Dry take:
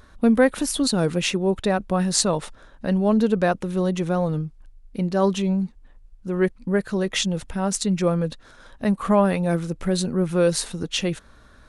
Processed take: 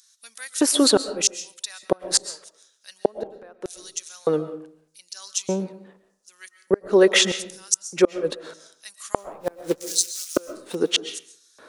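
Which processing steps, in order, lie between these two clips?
dynamic bell 1.5 kHz, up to +5 dB, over -36 dBFS, Q 1; 9.18–10.75 s: short-mantissa float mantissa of 2-bit; LFO high-pass square 0.82 Hz 410–6000 Hz; inverted gate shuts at -10 dBFS, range -37 dB; on a send: reverberation RT60 0.55 s, pre-delay 90 ms, DRR 12 dB; on the sum: trim +5.5 dB

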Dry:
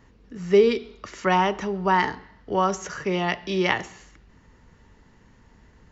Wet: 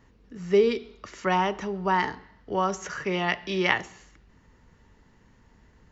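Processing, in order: 2.82–3.79 s: peaking EQ 1.9 kHz +4.5 dB 1.9 oct; trim -3.5 dB

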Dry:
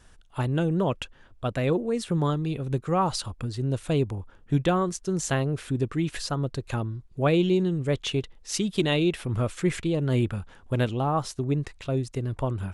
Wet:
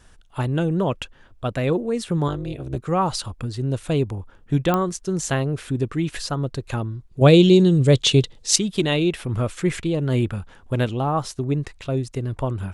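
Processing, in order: 2.28–2.77 s: AM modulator 200 Hz, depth 80%; 7.21–8.56 s: graphic EQ 125/250/500/4000/8000 Hz +9/+4/+6/+10/+10 dB; clicks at 4.74 s, -11 dBFS; trim +3 dB

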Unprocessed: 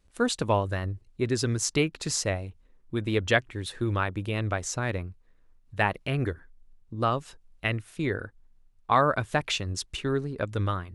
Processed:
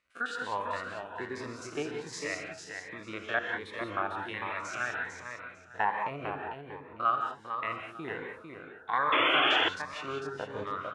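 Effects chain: spectrogram pixelated in time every 50 ms; in parallel at -1 dB: compression, threshold -35 dBFS, peak gain reduction 16 dB; on the sum: LFO band-pass saw down 0.47 Hz 830–1800 Hz; on a send: feedback delay 450 ms, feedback 21%, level -6 dB; on the sum: gated-style reverb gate 210 ms rising, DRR 3 dB; painted sound noise, 9.12–9.69 s, 260–3500 Hz -28 dBFS; Shepard-style phaser rising 1.3 Hz; trim +4 dB

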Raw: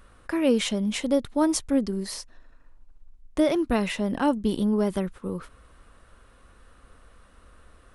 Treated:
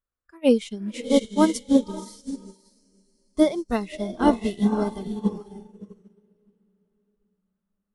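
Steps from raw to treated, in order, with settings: echo that smears into a reverb 569 ms, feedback 48%, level -3 dB; spectral noise reduction 14 dB; upward expansion 2.5:1, over -38 dBFS; trim +5.5 dB

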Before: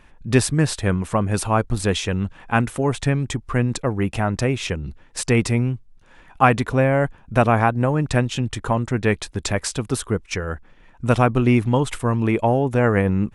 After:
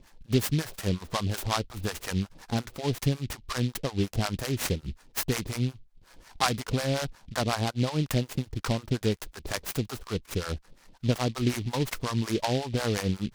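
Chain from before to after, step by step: compression 2.5:1, threshold -21 dBFS, peak gain reduction 8.5 dB; harmonic tremolo 5.5 Hz, depth 100%, crossover 660 Hz; delay time shaken by noise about 3.2 kHz, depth 0.095 ms

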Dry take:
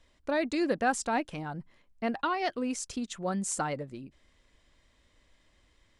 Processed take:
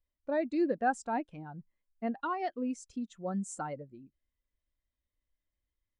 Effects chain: spectral contrast expander 1.5:1; trim -3 dB

